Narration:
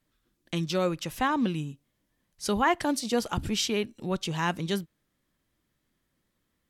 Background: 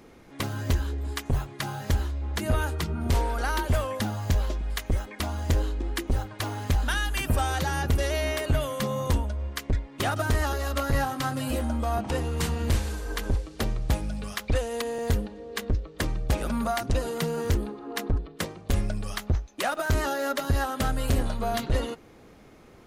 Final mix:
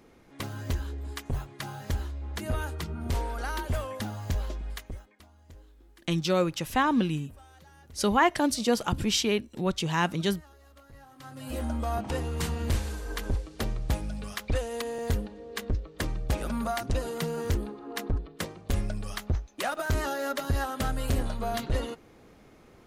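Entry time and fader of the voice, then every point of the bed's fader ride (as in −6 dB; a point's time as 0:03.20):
5.55 s, +2.0 dB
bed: 0:04.70 −5.5 dB
0:05.29 −27 dB
0:11.00 −27 dB
0:11.63 −3 dB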